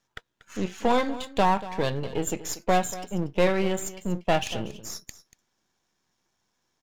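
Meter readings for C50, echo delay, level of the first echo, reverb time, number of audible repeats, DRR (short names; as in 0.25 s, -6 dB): none, 0.237 s, -16.0 dB, none, 1, none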